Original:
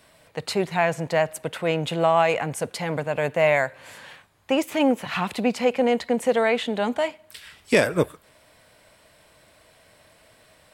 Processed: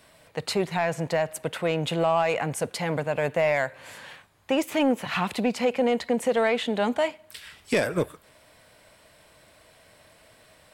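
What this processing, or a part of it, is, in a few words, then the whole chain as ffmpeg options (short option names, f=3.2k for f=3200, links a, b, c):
soft clipper into limiter: -af "asoftclip=type=tanh:threshold=-9.5dB,alimiter=limit=-14.5dB:level=0:latency=1:release=167"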